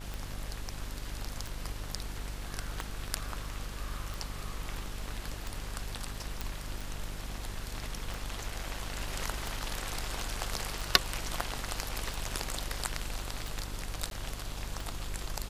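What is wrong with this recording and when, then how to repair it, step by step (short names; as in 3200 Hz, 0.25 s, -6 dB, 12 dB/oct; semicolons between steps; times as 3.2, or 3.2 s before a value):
buzz 50 Hz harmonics 28 -42 dBFS
tick 45 rpm
6.41 pop
14.1–14.11 gap 12 ms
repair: de-click; de-hum 50 Hz, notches 28; interpolate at 14.1, 12 ms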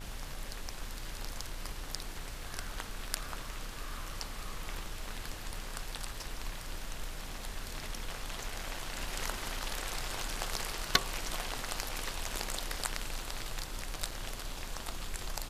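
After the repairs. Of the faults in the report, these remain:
none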